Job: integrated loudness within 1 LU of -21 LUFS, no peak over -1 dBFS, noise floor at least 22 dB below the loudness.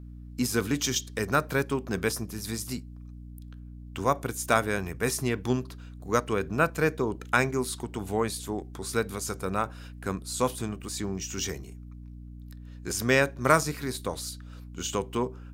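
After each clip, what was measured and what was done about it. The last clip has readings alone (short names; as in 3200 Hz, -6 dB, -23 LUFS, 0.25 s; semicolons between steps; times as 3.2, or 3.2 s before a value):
hum 60 Hz; harmonics up to 300 Hz; hum level -41 dBFS; loudness -29.0 LUFS; peak -5.0 dBFS; loudness target -21.0 LUFS
-> notches 60/120/180/240/300 Hz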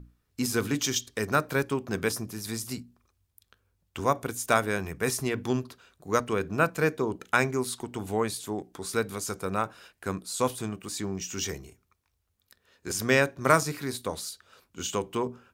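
hum none; loudness -29.0 LUFS; peak -5.0 dBFS; loudness target -21.0 LUFS
-> gain +8 dB; limiter -1 dBFS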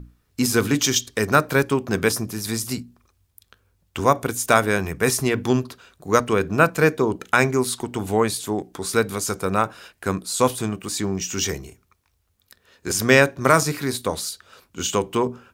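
loudness -21.5 LUFS; peak -1.0 dBFS; noise floor -67 dBFS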